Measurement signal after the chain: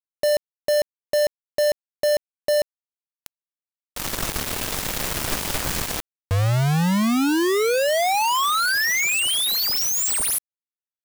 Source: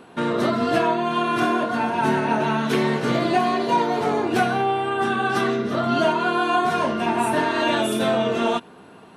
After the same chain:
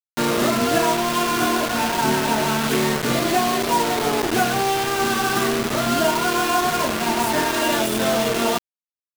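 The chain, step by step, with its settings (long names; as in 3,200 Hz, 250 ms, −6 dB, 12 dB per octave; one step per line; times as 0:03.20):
speech leveller within 3 dB 2 s
bit reduction 4 bits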